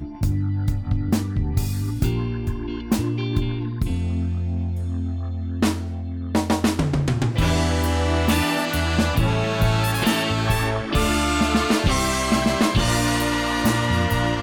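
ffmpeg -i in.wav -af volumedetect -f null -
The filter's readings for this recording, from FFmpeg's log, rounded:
mean_volume: -21.3 dB
max_volume: -8.3 dB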